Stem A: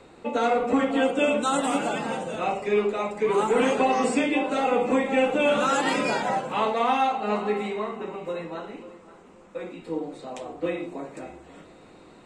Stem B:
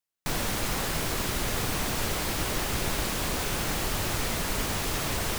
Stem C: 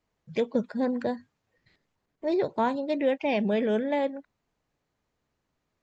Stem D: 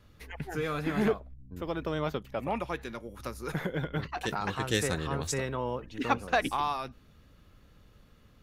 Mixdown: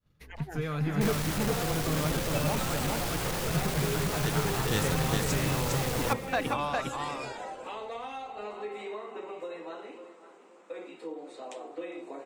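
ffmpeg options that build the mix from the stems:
-filter_complex "[0:a]acompressor=threshold=-31dB:ratio=3,highpass=f=320:w=0.5412,highpass=f=320:w=1.3066,acrossover=split=490|3000[a][b][c];[b]acompressor=threshold=-38dB:ratio=2.5[d];[a][d][c]amix=inputs=3:normalize=0,adelay=1150,volume=-3.5dB,asplit=2[e][f];[f]volume=-23dB[g];[1:a]asoftclip=type=tanh:threshold=-30dB,adelay=750,volume=0dB,asplit=2[h][i];[i]volume=-15dB[j];[2:a]aeval=exprs='abs(val(0))':c=same,volume=-19dB[k];[3:a]agate=range=-33dB:threshold=-49dB:ratio=3:detection=peak,volume=-3.5dB,asplit=2[l][m];[m]volume=-3dB[n];[g][j][n]amix=inputs=3:normalize=0,aecho=0:1:406:1[o];[e][h][k][l][o]amix=inputs=5:normalize=0,equalizer=f=150:w=2.8:g=9.5"

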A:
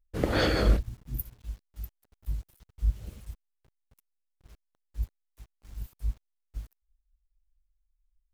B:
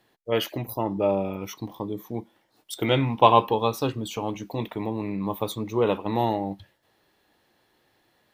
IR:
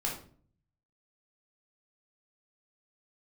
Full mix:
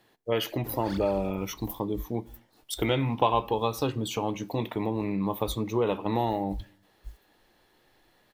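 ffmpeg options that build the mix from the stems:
-filter_complex "[0:a]aphaser=in_gain=1:out_gain=1:delay=3.9:decay=0.8:speed=2:type=triangular,alimiter=limit=-14.5dB:level=0:latency=1:release=259,highshelf=f=9k:g=7.5,adelay=500,volume=-13.5dB[a];[1:a]volume=1dB,asplit=2[b][c];[c]volume=-23.5dB[d];[2:a]atrim=start_sample=2205[e];[d][e]afir=irnorm=-1:irlink=0[f];[a][b][f]amix=inputs=3:normalize=0,acompressor=threshold=-24dB:ratio=2.5"

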